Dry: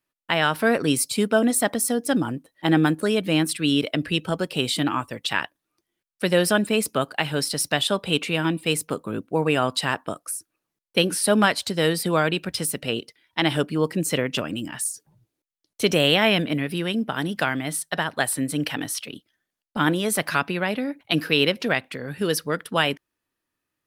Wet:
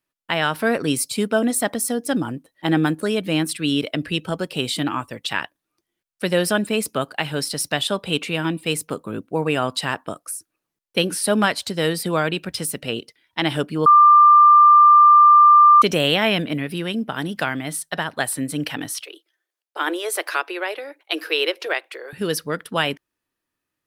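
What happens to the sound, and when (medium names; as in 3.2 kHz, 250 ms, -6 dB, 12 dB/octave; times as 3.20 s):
13.86–15.82 s: bleep 1.19 kHz -7 dBFS
19.05–22.13 s: Chebyshev high-pass 330 Hz, order 6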